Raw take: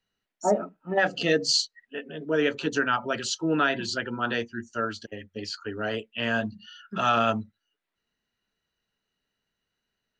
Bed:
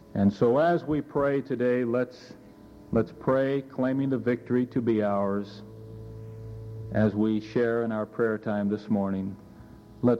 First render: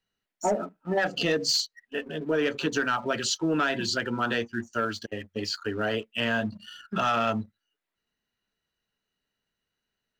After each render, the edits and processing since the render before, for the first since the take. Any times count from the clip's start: waveshaping leveller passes 1; compression 2.5:1, threshold -24 dBFS, peak gain reduction 6 dB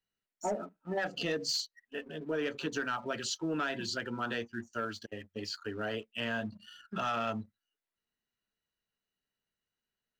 trim -8 dB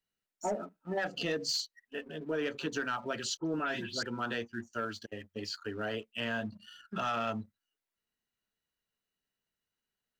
3.37–4.03 s: phase dispersion highs, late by 101 ms, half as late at 2.4 kHz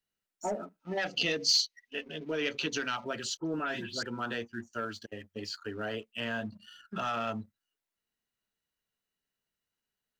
0.80–3.04 s: time-frequency box 1.9–6.7 kHz +8 dB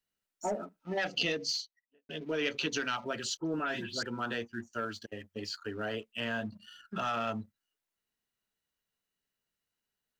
1.12–2.09 s: studio fade out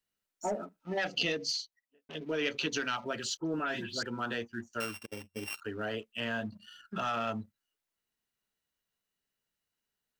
1.50–2.15 s: transformer saturation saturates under 2.6 kHz; 4.80–5.61 s: sorted samples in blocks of 16 samples

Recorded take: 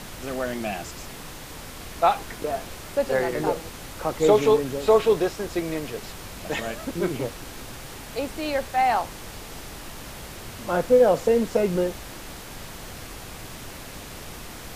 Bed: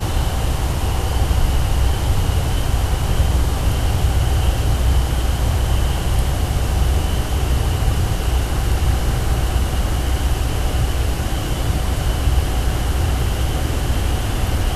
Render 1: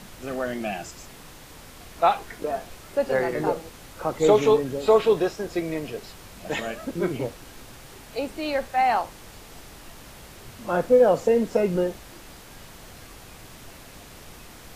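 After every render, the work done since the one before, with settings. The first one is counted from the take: noise print and reduce 6 dB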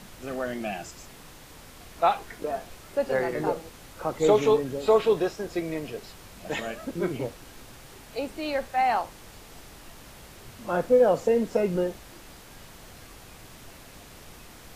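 trim -2.5 dB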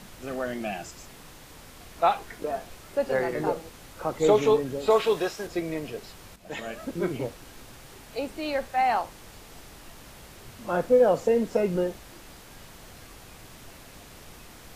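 4.90–5.47 s: tilt shelf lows -4.5 dB, about 690 Hz; 6.36–6.81 s: fade in linear, from -12 dB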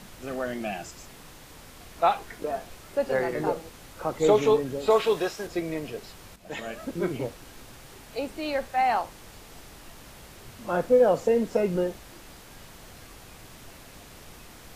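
no audible change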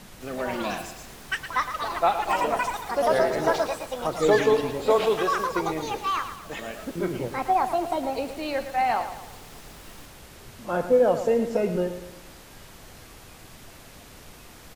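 ever faster or slower copies 208 ms, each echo +7 st, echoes 2; feedback delay 113 ms, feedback 46%, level -10.5 dB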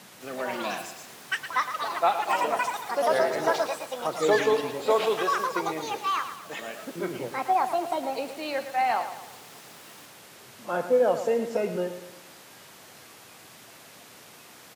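high-pass 110 Hz 24 dB/octave; bass shelf 300 Hz -9 dB

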